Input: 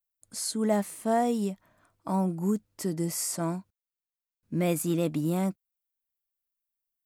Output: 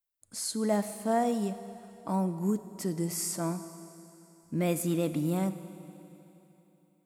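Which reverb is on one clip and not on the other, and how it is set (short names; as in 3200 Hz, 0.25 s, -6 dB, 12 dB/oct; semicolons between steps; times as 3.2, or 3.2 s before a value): Schroeder reverb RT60 3.2 s, combs from 27 ms, DRR 11.5 dB; gain -2 dB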